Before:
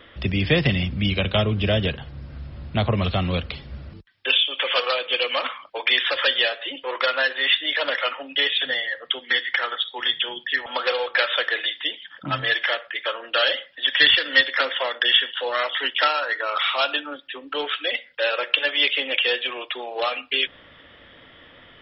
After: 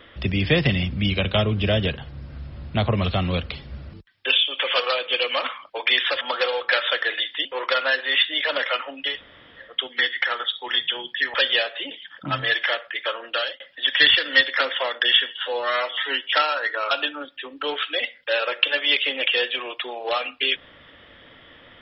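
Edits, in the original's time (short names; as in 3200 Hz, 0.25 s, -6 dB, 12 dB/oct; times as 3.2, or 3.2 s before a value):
6.21–6.77 swap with 10.67–11.91
8.42–9 room tone, crossfade 0.24 s
13.26–13.6 fade out
15.29–15.97 stretch 1.5×
16.57–16.82 cut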